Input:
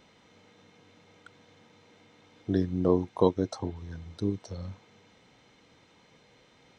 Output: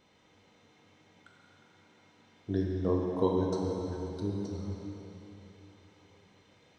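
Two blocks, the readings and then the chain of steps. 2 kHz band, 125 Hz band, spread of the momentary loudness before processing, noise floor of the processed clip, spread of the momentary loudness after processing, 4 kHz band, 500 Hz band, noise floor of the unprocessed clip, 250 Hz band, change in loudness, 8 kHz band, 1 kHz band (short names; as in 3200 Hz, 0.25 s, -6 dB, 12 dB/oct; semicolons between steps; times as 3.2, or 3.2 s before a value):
-2.5 dB, -1.5 dB, 17 LU, -64 dBFS, 21 LU, -3.5 dB, -2.5 dB, -61 dBFS, -3.0 dB, -2.5 dB, n/a, -2.5 dB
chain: plate-style reverb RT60 3.6 s, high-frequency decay 0.85×, DRR -2 dB; gain -7 dB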